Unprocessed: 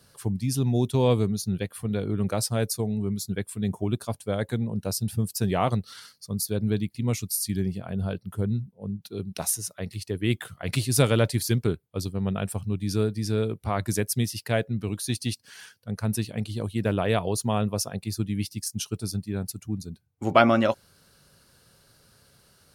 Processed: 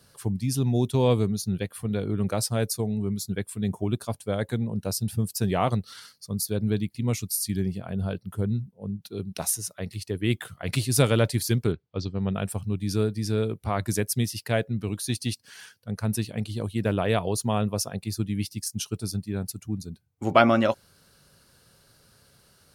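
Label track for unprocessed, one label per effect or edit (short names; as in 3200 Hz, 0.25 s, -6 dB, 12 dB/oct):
11.720000	12.330000	inverse Chebyshev low-pass stop band from 9700 Hz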